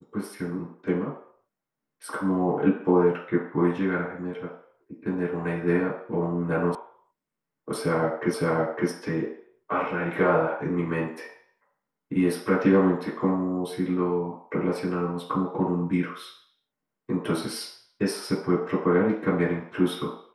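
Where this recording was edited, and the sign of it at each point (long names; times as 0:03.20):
0:06.75: cut off before it has died away
0:08.34: the same again, the last 0.56 s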